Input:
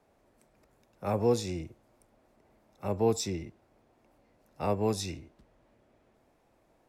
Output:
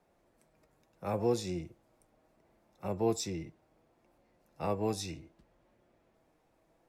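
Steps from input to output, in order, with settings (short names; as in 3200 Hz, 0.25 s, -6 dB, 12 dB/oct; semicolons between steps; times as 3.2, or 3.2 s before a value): flange 0.7 Hz, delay 5.5 ms, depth 1 ms, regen +63%; gain +1 dB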